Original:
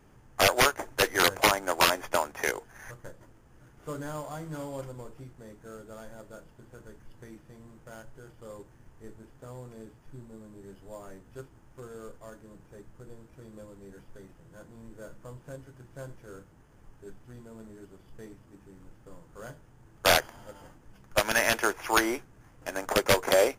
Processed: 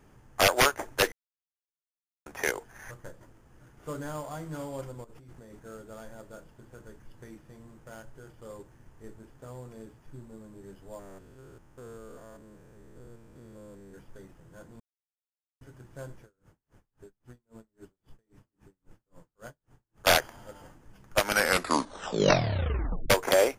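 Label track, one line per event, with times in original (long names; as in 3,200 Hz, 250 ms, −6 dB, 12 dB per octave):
1.120000	2.260000	silence
5.040000	5.600000	compressor whose output falls as the input rises −50 dBFS
10.990000	13.940000	spectrum averaged block by block every 200 ms
14.800000	15.610000	silence
16.220000	20.070000	tremolo with a sine in dB 3.7 Hz, depth 38 dB
21.180000	21.180000	tape stop 1.92 s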